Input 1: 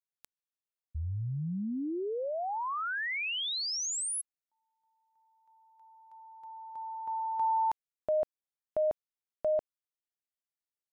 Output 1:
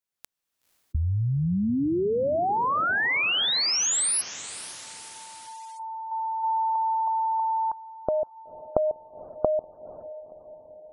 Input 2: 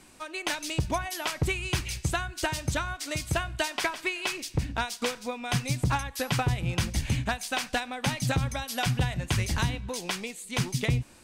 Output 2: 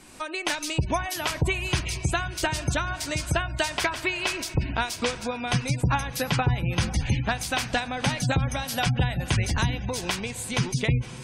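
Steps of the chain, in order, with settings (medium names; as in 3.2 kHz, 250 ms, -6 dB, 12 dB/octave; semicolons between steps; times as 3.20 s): recorder AGC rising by 29 dB/s, up to +20 dB; echo that smears into a reverb 503 ms, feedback 57%, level -15 dB; spectral gate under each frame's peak -30 dB strong; trim +3 dB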